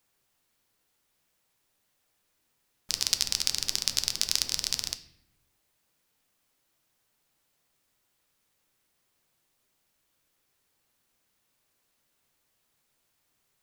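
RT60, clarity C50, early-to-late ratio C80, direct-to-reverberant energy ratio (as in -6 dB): 0.70 s, 14.0 dB, 17.5 dB, 9.5 dB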